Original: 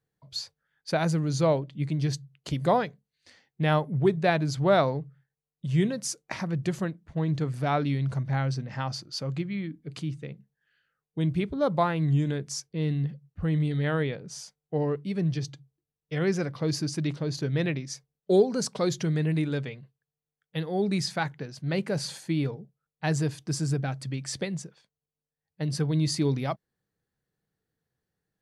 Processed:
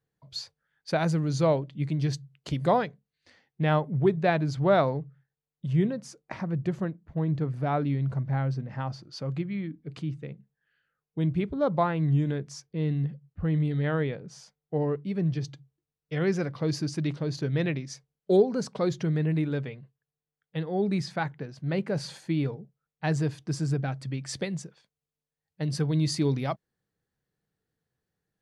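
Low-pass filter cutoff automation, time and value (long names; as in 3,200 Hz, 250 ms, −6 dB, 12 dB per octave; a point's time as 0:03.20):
low-pass filter 6 dB per octave
5,400 Hz
from 0:02.86 2,700 Hz
from 0:05.73 1,200 Hz
from 0:09.03 2,200 Hz
from 0:15.44 4,400 Hz
from 0:18.37 2,100 Hz
from 0:21.96 3,400 Hz
from 0:24.29 8,400 Hz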